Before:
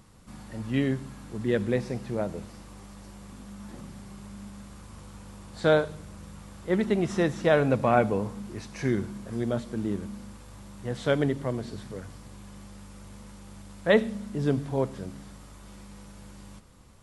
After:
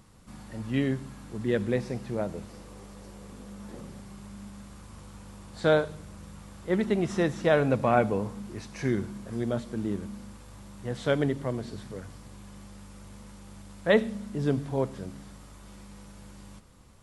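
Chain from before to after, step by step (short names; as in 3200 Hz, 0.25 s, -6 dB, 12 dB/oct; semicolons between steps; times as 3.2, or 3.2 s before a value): 2.5–4.01 bell 460 Hz +9 dB 0.57 oct; gain -1 dB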